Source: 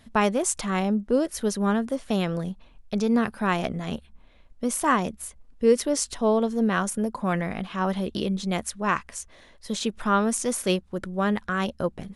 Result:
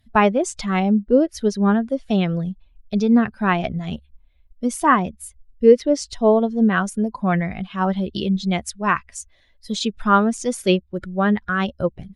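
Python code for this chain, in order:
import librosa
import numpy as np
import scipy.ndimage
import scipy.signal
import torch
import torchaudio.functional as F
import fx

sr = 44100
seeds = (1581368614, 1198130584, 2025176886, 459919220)

y = fx.bin_expand(x, sr, power=1.5)
y = fx.env_lowpass_down(y, sr, base_hz=3000.0, full_db=-21.0)
y = y * librosa.db_to_amplitude(8.5)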